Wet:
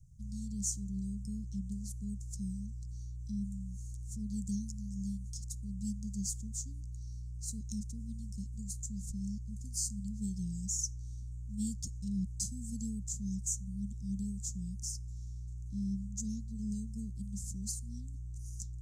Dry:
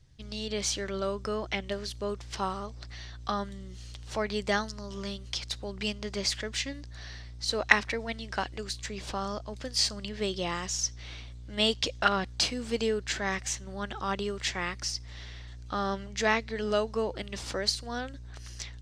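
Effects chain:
Chebyshev band-stop filter 200–6,800 Hz, order 4
level +2 dB

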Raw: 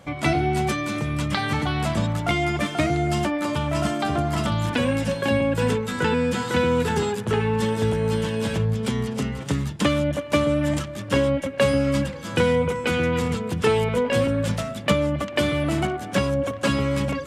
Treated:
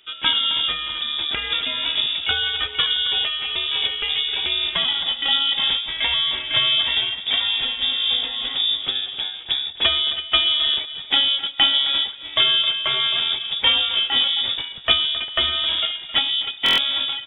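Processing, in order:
single-tap delay 266 ms −12 dB
voice inversion scrambler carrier 3,600 Hz
buffer that repeats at 0:16.64, samples 1,024, times 5
expander for the loud parts 1.5 to 1, over −35 dBFS
level +3 dB

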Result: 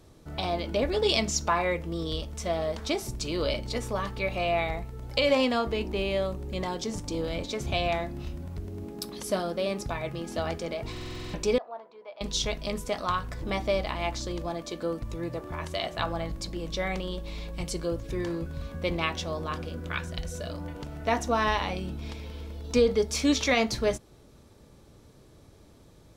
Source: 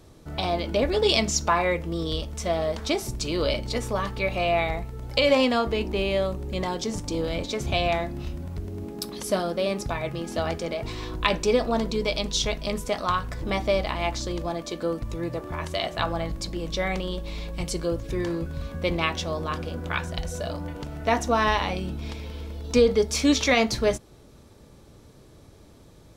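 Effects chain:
0:11.58–0:12.21: four-pole ladder band-pass 910 Hz, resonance 35%
0:19.66–0:20.58: parametric band 810 Hz −7.5 dB 0.62 octaves
buffer that repeats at 0:10.92, samples 2,048, times 8
level −3.5 dB

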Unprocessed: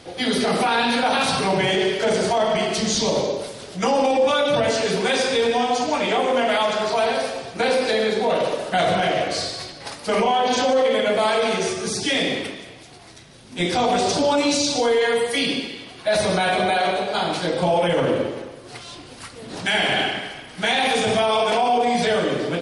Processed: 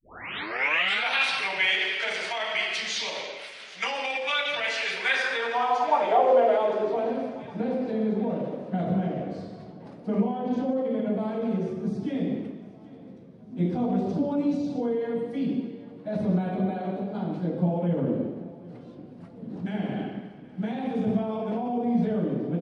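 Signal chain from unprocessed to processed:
turntable start at the beginning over 1.09 s
band-pass filter sweep 2,300 Hz → 200 Hz, 0:04.93–0:07.47
repeating echo 781 ms, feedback 58%, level −21 dB
level +4 dB

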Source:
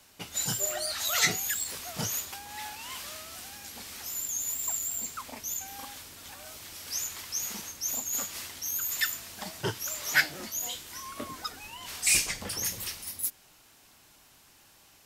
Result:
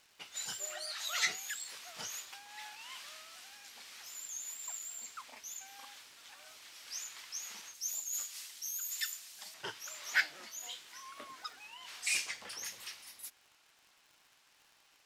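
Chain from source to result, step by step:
resonant band-pass 2,500 Hz, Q 0.52, from 0:07.74 6,200 Hz, from 0:09.54 2,200 Hz
surface crackle 100 per second −46 dBFS
level −5.5 dB

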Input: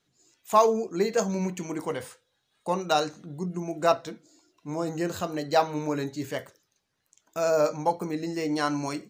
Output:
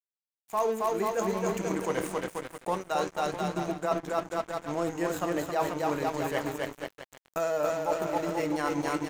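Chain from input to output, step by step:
camcorder AGC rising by 6.2 dB per second
low-shelf EQ 230 Hz −9 dB
in parallel at −6 dB: wrap-around overflow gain 9 dB
on the sum: parametric band 4,500 Hz −11 dB 0.86 octaves
bouncing-ball delay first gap 270 ms, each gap 0.8×, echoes 5
dead-zone distortion −35.5 dBFS
reversed playback
downward compressor 6 to 1, threshold −25 dBFS, peak gain reduction 12.5 dB
reversed playback

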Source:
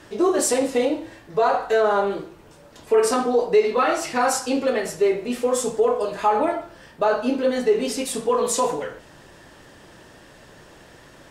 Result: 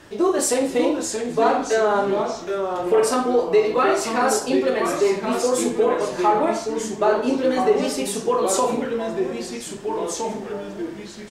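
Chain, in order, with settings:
double-tracking delay 44 ms −12.5 dB
delay with pitch and tempo change per echo 563 ms, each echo −2 semitones, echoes 3, each echo −6 dB

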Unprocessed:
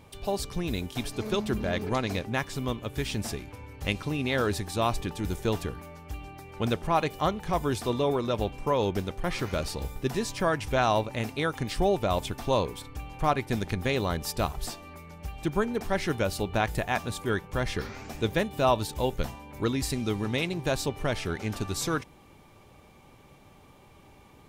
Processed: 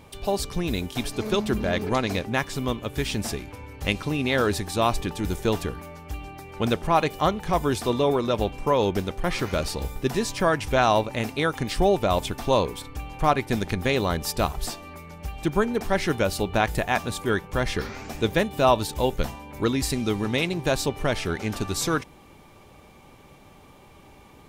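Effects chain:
parametric band 110 Hz −3 dB 0.77 octaves
level +4.5 dB

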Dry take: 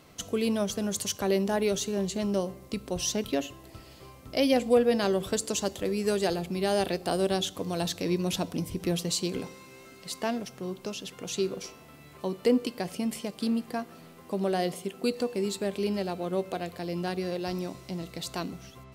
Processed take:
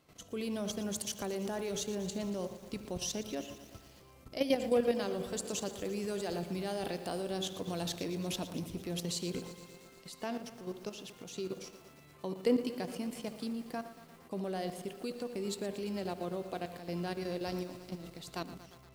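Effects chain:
feedback echo with a low-pass in the loop 74 ms, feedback 31%, level −12.5 dB
output level in coarse steps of 11 dB
feedback echo at a low word length 116 ms, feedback 80%, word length 8 bits, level −13.5 dB
level −3.5 dB

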